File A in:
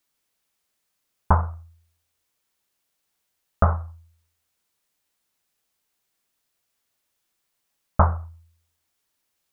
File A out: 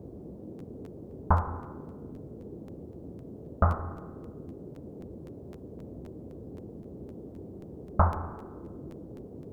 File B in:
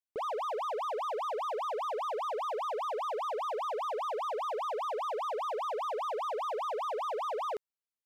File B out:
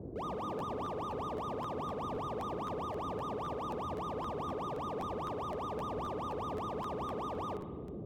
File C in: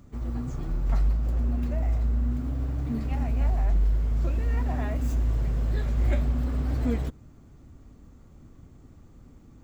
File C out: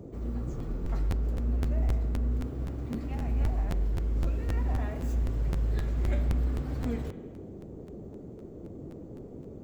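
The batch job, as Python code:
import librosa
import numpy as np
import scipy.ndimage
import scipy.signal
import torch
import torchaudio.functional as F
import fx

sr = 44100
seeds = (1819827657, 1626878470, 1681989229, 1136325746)

y = fx.rev_spring(x, sr, rt60_s=1.3, pass_ms=(34, 56), chirp_ms=70, drr_db=8.0)
y = fx.dmg_noise_band(y, sr, seeds[0], low_hz=56.0, high_hz=440.0, level_db=-38.0)
y = fx.buffer_crackle(y, sr, first_s=0.58, period_s=0.26, block=512, kind='repeat')
y = y * 10.0 ** (-5.5 / 20.0)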